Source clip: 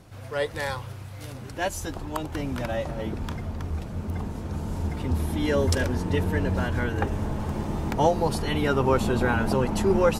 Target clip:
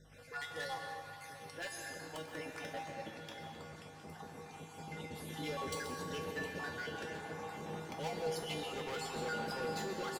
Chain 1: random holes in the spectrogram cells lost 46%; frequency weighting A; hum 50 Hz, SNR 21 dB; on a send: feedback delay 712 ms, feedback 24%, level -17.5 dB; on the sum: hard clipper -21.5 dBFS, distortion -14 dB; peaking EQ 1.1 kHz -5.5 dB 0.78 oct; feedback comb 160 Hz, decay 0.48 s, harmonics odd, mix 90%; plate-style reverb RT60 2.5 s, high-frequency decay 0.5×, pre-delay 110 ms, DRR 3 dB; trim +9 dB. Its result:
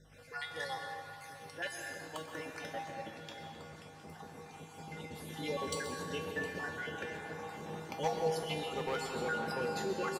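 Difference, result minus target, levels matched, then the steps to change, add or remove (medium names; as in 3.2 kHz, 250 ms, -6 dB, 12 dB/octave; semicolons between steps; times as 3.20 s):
hard clipper: distortion -8 dB
change: hard clipper -30.5 dBFS, distortion -6 dB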